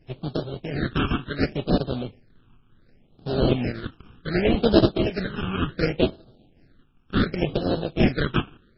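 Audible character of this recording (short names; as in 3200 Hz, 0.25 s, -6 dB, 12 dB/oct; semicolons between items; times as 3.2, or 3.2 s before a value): aliases and images of a low sample rate 1000 Hz, jitter 20%; random-step tremolo; phasing stages 8, 0.68 Hz, lowest notch 570–2100 Hz; MP3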